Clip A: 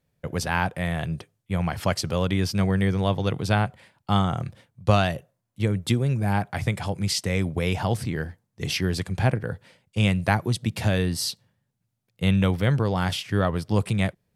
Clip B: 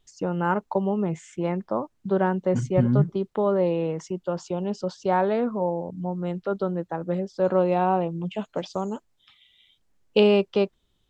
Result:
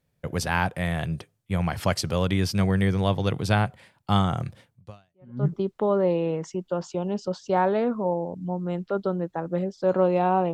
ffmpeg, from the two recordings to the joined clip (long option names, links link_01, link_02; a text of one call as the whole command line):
ffmpeg -i cue0.wav -i cue1.wav -filter_complex "[0:a]apad=whole_dur=10.53,atrim=end=10.53,atrim=end=5.47,asetpts=PTS-STARTPTS[link_01];[1:a]atrim=start=2.29:end=8.09,asetpts=PTS-STARTPTS[link_02];[link_01][link_02]acrossfade=duration=0.74:curve1=exp:curve2=exp" out.wav